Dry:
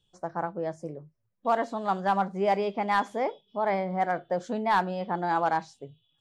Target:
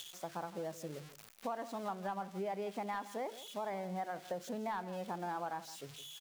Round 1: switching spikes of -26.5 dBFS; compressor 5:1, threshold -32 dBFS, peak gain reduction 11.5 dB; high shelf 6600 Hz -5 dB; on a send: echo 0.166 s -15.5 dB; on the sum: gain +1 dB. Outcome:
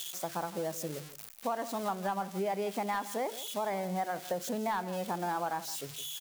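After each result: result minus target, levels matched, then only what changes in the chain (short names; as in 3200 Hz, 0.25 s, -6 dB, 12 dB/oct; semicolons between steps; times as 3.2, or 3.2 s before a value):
compressor: peak gain reduction -6 dB; 8000 Hz band +5.0 dB
change: compressor 5:1, threshold -39.5 dBFS, peak gain reduction 17.5 dB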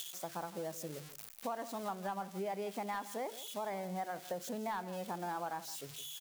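8000 Hz band +5.5 dB
change: high shelf 6600 Hz -15.5 dB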